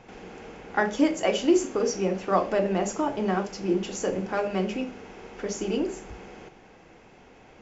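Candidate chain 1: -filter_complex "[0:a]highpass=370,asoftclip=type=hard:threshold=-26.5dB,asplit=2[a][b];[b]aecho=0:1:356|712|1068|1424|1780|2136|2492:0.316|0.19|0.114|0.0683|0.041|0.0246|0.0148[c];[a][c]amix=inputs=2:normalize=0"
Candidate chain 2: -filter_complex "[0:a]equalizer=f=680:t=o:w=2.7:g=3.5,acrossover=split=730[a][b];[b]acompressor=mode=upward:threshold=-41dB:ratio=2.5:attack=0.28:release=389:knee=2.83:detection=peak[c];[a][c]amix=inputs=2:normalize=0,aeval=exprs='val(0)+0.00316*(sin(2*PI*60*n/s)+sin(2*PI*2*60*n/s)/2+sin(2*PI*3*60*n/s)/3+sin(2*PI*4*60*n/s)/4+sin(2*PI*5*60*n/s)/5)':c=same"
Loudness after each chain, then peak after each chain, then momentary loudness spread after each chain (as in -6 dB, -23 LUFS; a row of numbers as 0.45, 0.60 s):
-32.0, -24.5 LUFS; -22.0, -5.5 dBFS; 17, 20 LU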